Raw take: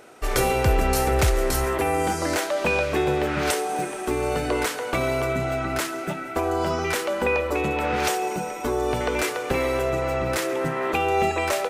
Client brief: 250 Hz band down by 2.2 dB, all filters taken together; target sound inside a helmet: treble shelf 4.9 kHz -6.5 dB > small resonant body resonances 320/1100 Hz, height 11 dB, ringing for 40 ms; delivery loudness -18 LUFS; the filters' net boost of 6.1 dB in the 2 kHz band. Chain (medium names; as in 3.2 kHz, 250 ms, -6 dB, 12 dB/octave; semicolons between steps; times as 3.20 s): peaking EQ 250 Hz -3.5 dB; peaking EQ 2 kHz +9 dB; treble shelf 4.9 kHz -6.5 dB; small resonant body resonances 320/1100 Hz, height 11 dB, ringing for 40 ms; trim +3 dB